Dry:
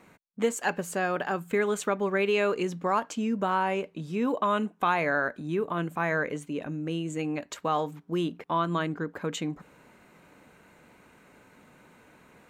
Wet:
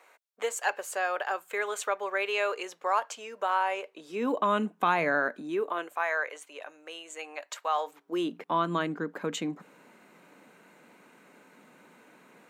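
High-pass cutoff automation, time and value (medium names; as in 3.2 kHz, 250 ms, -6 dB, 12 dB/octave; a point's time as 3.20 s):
high-pass 24 dB/octave
3.82 s 510 Hz
4.54 s 160 Hz
5.16 s 160 Hz
6.06 s 600 Hz
7.77 s 600 Hz
8.41 s 180 Hz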